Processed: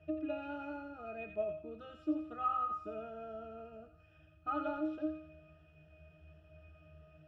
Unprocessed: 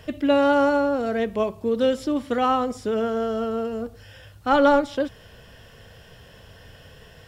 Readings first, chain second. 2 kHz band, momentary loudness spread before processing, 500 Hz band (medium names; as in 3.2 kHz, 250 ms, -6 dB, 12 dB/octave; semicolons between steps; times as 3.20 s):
-20.5 dB, 11 LU, -20.5 dB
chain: bass shelf 340 Hz -10 dB; pitch-class resonator D#, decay 0.51 s; feedback echo behind a high-pass 87 ms, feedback 40%, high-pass 1.4 kHz, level -4.5 dB; trim +10.5 dB